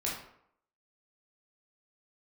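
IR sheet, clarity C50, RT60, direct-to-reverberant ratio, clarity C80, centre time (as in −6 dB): 3.5 dB, 0.70 s, −5.5 dB, 7.5 dB, 44 ms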